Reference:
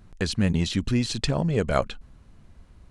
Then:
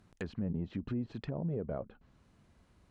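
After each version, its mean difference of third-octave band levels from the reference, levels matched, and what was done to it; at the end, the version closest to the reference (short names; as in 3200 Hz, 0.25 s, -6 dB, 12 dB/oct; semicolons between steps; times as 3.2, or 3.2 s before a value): 6.5 dB: HPF 150 Hz 6 dB/oct; treble ducked by the level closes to 590 Hz, closed at -22.5 dBFS; limiter -21 dBFS, peak gain reduction 7 dB; gain -7 dB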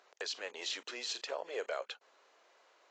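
13.0 dB: compressor 2.5:1, threshold -30 dBFS, peak gain reduction 9.5 dB; steep high-pass 450 Hz 36 dB/oct; limiter -27.5 dBFS, peak gain reduction 10.5 dB; AAC 32 kbps 16000 Hz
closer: first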